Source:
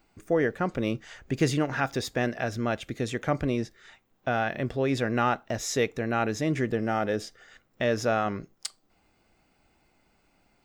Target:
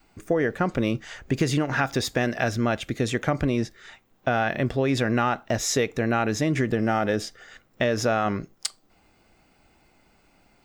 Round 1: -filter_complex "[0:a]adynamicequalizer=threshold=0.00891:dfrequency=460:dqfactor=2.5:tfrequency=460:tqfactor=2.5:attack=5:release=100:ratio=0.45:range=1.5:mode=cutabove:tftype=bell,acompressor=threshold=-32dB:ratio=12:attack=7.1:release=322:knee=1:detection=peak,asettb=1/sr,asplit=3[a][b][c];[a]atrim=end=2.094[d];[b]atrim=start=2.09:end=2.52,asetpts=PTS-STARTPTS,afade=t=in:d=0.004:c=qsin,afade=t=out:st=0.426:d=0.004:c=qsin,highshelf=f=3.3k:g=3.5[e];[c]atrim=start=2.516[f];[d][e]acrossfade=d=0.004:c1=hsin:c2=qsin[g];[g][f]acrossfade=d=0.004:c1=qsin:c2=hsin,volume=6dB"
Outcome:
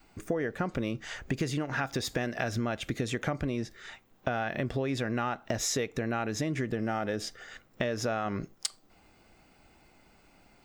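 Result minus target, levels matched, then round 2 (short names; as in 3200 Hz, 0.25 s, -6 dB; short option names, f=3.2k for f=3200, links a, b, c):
compressor: peak gain reduction +8 dB
-filter_complex "[0:a]adynamicequalizer=threshold=0.00891:dfrequency=460:dqfactor=2.5:tfrequency=460:tqfactor=2.5:attack=5:release=100:ratio=0.45:range=1.5:mode=cutabove:tftype=bell,acompressor=threshold=-23dB:ratio=12:attack=7.1:release=322:knee=1:detection=peak,asettb=1/sr,asplit=3[a][b][c];[a]atrim=end=2.094[d];[b]atrim=start=2.09:end=2.52,asetpts=PTS-STARTPTS,afade=t=in:d=0.004:c=qsin,afade=t=out:st=0.426:d=0.004:c=qsin,highshelf=f=3.3k:g=3.5[e];[c]atrim=start=2.516[f];[d][e]acrossfade=d=0.004:c1=hsin:c2=qsin[g];[g][f]acrossfade=d=0.004:c1=qsin:c2=hsin,volume=6dB"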